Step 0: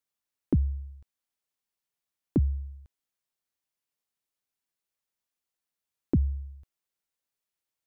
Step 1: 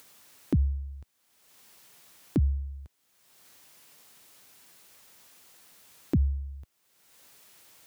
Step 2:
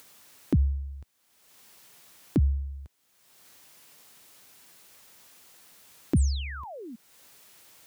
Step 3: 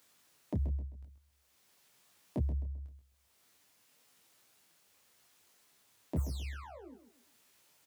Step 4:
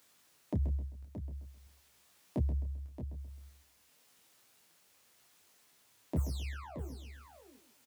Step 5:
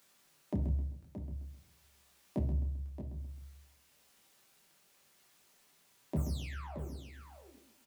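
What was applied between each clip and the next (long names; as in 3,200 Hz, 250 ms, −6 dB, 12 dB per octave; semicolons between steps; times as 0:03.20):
high-pass filter 77 Hz; in parallel at +2 dB: upward compression, threshold −32 dBFS; on the sum: brickwall limiter −16 dBFS, peak gain reduction 8 dB; level −1.5 dB
sound drawn into the spectrogram fall, 0:06.16–0:06.96, 210–10,000 Hz −42 dBFS; level +1.5 dB
phase distortion by the signal itself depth 0.42 ms; repeating echo 131 ms, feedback 34%, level −10 dB; micro pitch shift up and down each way 32 cents; level −7 dB
single-tap delay 624 ms −10 dB; level +1 dB
convolution reverb RT60 0.55 s, pre-delay 5 ms, DRR 5.5 dB; level −1 dB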